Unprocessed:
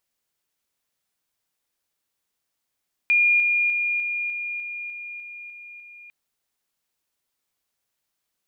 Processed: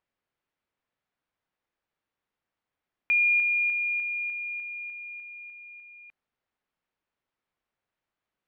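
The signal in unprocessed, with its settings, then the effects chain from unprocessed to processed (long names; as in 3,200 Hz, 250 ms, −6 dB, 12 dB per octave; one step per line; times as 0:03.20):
level staircase 2,420 Hz −15 dBFS, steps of −3 dB, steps 10, 0.30 s 0.00 s
low-pass filter 2,200 Hz 12 dB per octave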